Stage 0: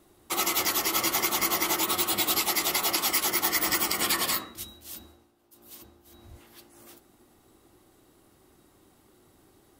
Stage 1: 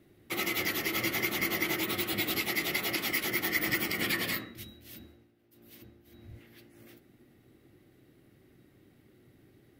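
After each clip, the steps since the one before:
octave-band graphic EQ 125/250/500/1,000/2,000/8,000 Hz +12/+5/+4/−10/+10/−9 dB
level −6 dB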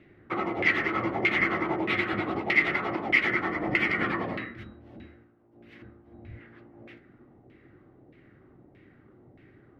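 auto-filter low-pass saw down 1.6 Hz 700–2,500 Hz
level +4.5 dB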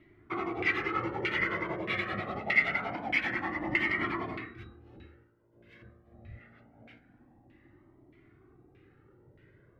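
flanger whose copies keep moving one way rising 0.25 Hz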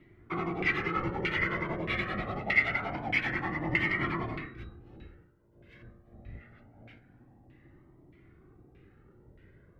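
sub-octave generator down 1 octave, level +1 dB

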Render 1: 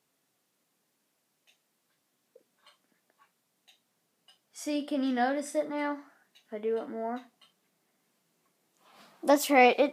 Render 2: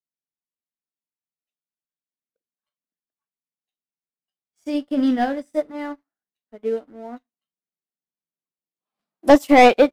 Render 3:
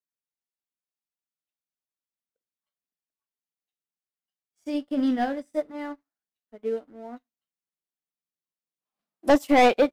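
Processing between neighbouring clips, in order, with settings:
leveller curve on the samples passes 2; low-shelf EQ 370 Hz +8 dB; expander for the loud parts 2.5 to 1, over −34 dBFS; level +5 dB
soft clipping −5.5 dBFS, distortion −18 dB; level −4.5 dB

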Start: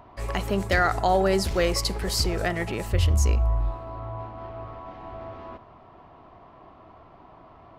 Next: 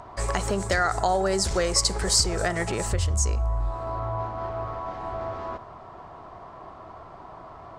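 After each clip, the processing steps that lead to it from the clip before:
downward compressor 3 to 1, threshold −29 dBFS, peak gain reduction 9.5 dB
drawn EQ curve 170 Hz 0 dB, 270 Hz −4 dB, 380 Hz +1 dB, 1,500 Hz +4 dB, 2,700 Hz −3 dB, 8,300 Hz +13 dB, 12,000 Hz −7 dB
level +4.5 dB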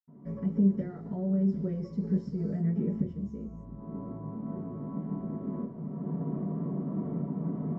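camcorder AGC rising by 18 dB per second
convolution reverb, pre-delay 76 ms

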